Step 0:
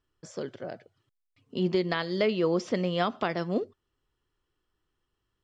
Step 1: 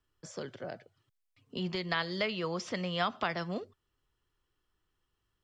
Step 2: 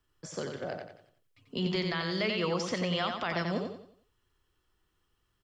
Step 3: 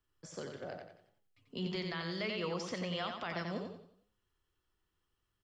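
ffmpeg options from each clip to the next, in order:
-filter_complex "[0:a]equalizer=f=340:t=o:w=1.8:g=-3.5,acrossover=split=160|690|3700[s0][s1][s2][s3];[s1]acompressor=threshold=0.0112:ratio=6[s4];[s0][s4][s2][s3]amix=inputs=4:normalize=0"
-filter_complex "[0:a]alimiter=level_in=1.12:limit=0.0631:level=0:latency=1,volume=0.891,asplit=2[s0][s1];[s1]aecho=0:1:90|180|270|360|450:0.562|0.208|0.077|0.0285|0.0105[s2];[s0][s2]amix=inputs=2:normalize=0,volume=1.5"
-af "flanger=delay=9.2:depth=3:regen=89:speed=1.7:shape=triangular,volume=0.75"

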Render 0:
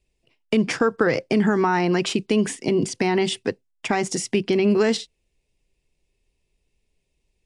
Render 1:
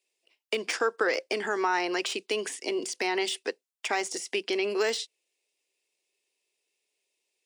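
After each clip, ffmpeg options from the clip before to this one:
-af "highpass=f=360:w=0.5412,highpass=f=360:w=1.3066,deesser=0.65,highshelf=f=2100:g=9,volume=0.473"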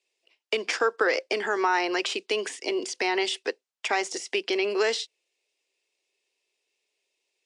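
-af "highpass=260,lowpass=6800,volume=1.41"

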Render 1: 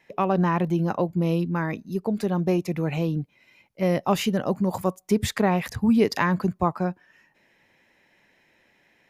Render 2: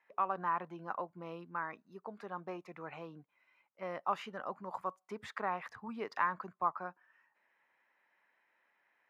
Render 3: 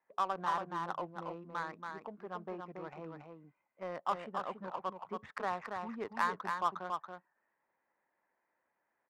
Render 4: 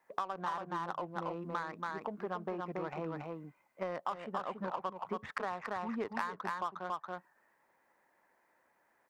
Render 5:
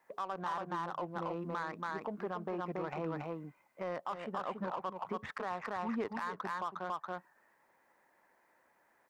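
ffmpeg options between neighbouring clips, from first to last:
-af "bandpass=f=1200:t=q:w=2.4:csg=0,volume=0.631"
-af "acrusher=bits=6:mode=log:mix=0:aa=0.000001,adynamicsmooth=sensitivity=7.5:basefreq=1100,aecho=1:1:280:0.562"
-af "acompressor=threshold=0.00708:ratio=10,volume=2.99"
-af "alimiter=level_in=2:limit=0.0631:level=0:latency=1:release=18,volume=0.501,volume=1.26"

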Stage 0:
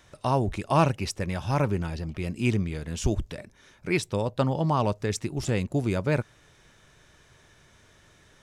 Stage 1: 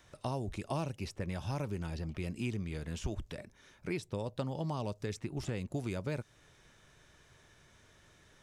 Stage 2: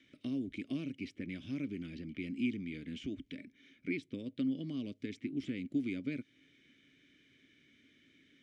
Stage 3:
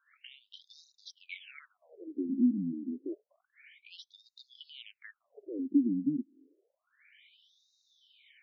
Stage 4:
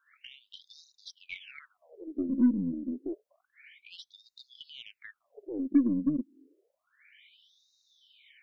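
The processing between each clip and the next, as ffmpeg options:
-filter_complex "[0:a]acrossover=split=750|3100[s0][s1][s2];[s0]acompressor=threshold=0.0355:ratio=4[s3];[s1]acompressor=threshold=0.00708:ratio=4[s4];[s2]acompressor=threshold=0.00562:ratio=4[s5];[s3][s4][s5]amix=inputs=3:normalize=0,volume=0.562"
-filter_complex "[0:a]asplit=3[s0][s1][s2];[s0]bandpass=f=270:t=q:w=8,volume=1[s3];[s1]bandpass=f=2290:t=q:w=8,volume=0.501[s4];[s2]bandpass=f=3010:t=q:w=8,volume=0.355[s5];[s3][s4][s5]amix=inputs=3:normalize=0,volume=3.55"
-af "afftfilt=real='re*between(b*sr/1024,230*pow(5200/230,0.5+0.5*sin(2*PI*0.29*pts/sr))/1.41,230*pow(5200/230,0.5+0.5*sin(2*PI*0.29*pts/sr))*1.41)':imag='im*between(b*sr/1024,230*pow(5200/230,0.5+0.5*sin(2*PI*0.29*pts/sr))/1.41,230*pow(5200/230,0.5+0.5*sin(2*PI*0.29*pts/sr))*1.41)':win_size=1024:overlap=0.75,volume=2.66"
-af "aeval=exprs='0.158*(cos(1*acos(clip(val(0)/0.158,-1,1)))-cos(1*PI/2))+0.00355*(cos(8*acos(clip(val(0)/0.158,-1,1)))-cos(8*PI/2))':c=same,volume=1.33"

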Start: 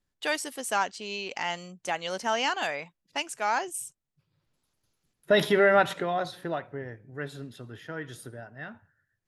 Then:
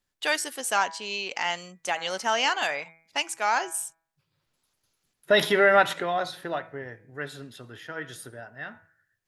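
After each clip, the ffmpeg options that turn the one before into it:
-af "lowshelf=f=470:g=-8.5,bandreject=f=163.2:t=h:w=4,bandreject=f=326.4:t=h:w=4,bandreject=f=489.6:t=h:w=4,bandreject=f=652.8:t=h:w=4,bandreject=f=816:t=h:w=4,bandreject=f=979.2:t=h:w=4,bandreject=f=1142.4:t=h:w=4,bandreject=f=1305.6:t=h:w=4,bandreject=f=1468.8:t=h:w=4,bandreject=f=1632:t=h:w=4,bandreject=f=1795.2:t=h:w=4,bandreject=f=1958.4:t=h:w=4,bandreject=f=2121.6:t=h:w=4,bandreject=f=2284.8:t=h:w=4,bandreject=f=2448:t=h:w=4,volume=1.68"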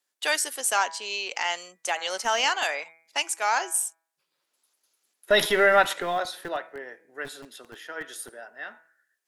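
-filter_complex "[0:a]equalizer=f=9900:t=o:w=1.4:g=6,acrossover=split=280|2100[s0][s1][s2];[s0]acrusher=bits=4:dc=4:mix=0:aa=0.000001[s3];[s3][s1][s2]amix=inputs=3:normalize=0"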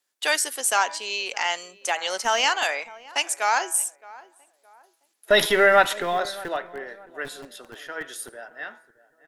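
-filter_complex "[0:a]asplit=2[s0][s1];[s1]adelay=617,lowpass=f=1300:p=1,volume=0.112,asplit=2[s2][s3];[s3]adelay=617,lowpass=f=1300:p=1,volume=0.38,asplit=2[s4][s5];[s5]adelay=617,lowpass=f=1300:p=1,volume=0.38[s6];[s0][s2][s4][s6]amix=inputs=4:normalize=0,volume=1.33"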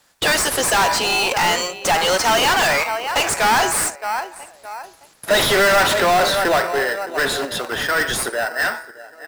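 -filter_complex "[0:a]asplit=2[s0][s1];[s1]highpass=f=720:p=1,volume=50.1,asoftclip=type=tanh:threshold=0.668[s2];[s0][s2]amix=inputs=2:normalize=0,lowpass=f=6800:p=1,volume=0.501,asplit=2[s3][s4];[s4]acrusher=samples=13:mix=1:aa=0.000001,volume=0.562[s5];[s3][s5]amix=inputs=2:normalize=0,volume=0.422"

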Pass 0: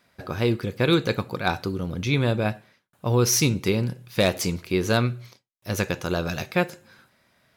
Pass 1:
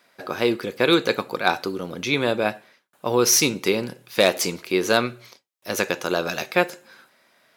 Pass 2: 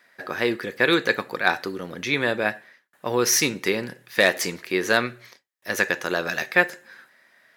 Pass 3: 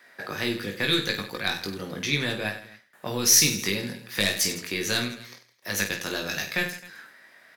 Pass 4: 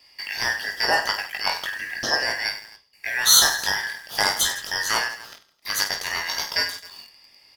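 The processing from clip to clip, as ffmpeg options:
-af "highpass=310,volume=1.68"
-af "equalizer=f=1800:t=o:w=0.35:g=13.5,volume=0.708"
-filter_complex "[0:a]aeval=exprs='0.891*(cos(1*acos(clip(val(0)/0.891,-1,1)))-cos(1*PI/2))+0.02*(cos(4*acos(clip(val(0)/0.891,-1,1)))-cos(4*PI/2))':c=same,acrossover=split=210|3000[s0][s1][s2];[s1]acompressor=threshold=0.01:ratio=3[s3];[s0][s3][s2]amix=inputs=3:normalize=0,aecho=1:1:20|50|95|162.5|263.8:0.631|0.398|0.251|0.158|0.1,volume=1.33"
-filter_complex "[0:a]afftfilt=real='real(if(lt(b,272),68*(eq(floor(b/68),0)*2+eq(floor(b/68),1)*0+eq(floor(b/68),2)*3+eq(floor(b/68),3)*1)+mod(b,68),b),0)':imag='imag(if(lt(b,272),68*(eq(floor(b/68),0)*2+eq(floor(b/68),1)*0+eq(floor(b/68),2)*3+eq(floor(b/68),3)*1)+mod(b,68),b),0)':win_size=2048:overlap=0.75,asplit=2[s0][s1];[s1]acrusher=bits=6:mix=0:aa=0.000001,volume=0.422[s2];[s0][s2]amix=inputs=2:normalize=0"

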